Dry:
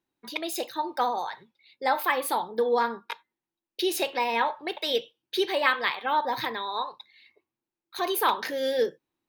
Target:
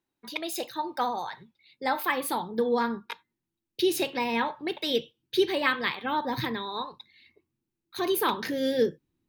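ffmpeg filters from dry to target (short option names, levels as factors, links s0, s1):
-af "asubboost=boost=7:cutoff=250,volume=0.891"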